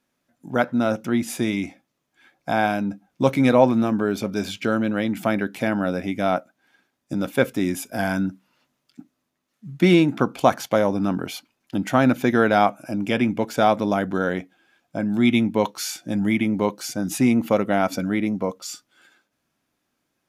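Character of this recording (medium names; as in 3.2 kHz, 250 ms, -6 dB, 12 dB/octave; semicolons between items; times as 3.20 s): noise floor -76 dBFS; spectral tilt -5.0 dB/octave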